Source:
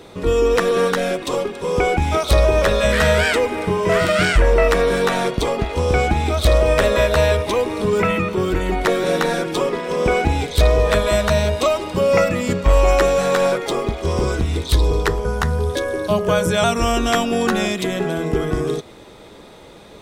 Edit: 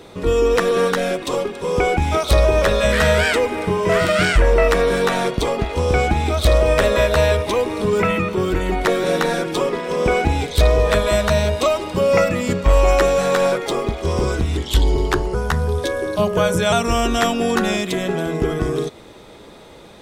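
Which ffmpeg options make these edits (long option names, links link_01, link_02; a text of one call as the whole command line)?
ffmpeg -i in.wav -filter_complex "[0:a]asplit=3[link_01][link_02][link_03];[link_01]atrim=end=14.574[link_04];[link_02]atrim=start=14.57:end=15.26,asetpts=PTS-STARTPTS,asetrate=39249,aresample=44100[link_05];[link_03]atrim=start=15.256[link_06];[link_04][link_05]acrossfade=duration=0.004:curve1=hsin:curve2=hsin[link_07];[link_07][link_06]acrossfade=duration=0.004:curve1=hsin:curve2=hsin" out.wav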